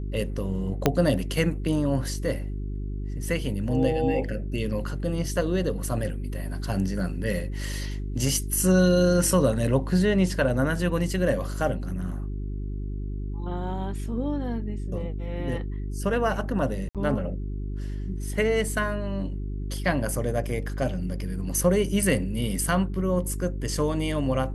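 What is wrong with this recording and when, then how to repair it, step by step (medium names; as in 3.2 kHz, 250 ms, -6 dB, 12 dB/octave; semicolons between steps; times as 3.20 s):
hum 50 Hz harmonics 8 -31 dBFS
0.86 s: pop -5 dBFS
16.89–16.95 s: dropout 57 ms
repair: de-click; de-hum 50 Hz, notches 8; interpolate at 16.89 s, 57 ms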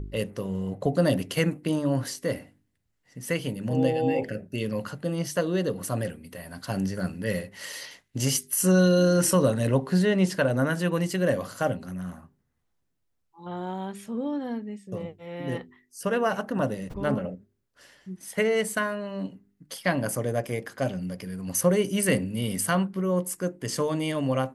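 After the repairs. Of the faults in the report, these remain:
0.86 s: pop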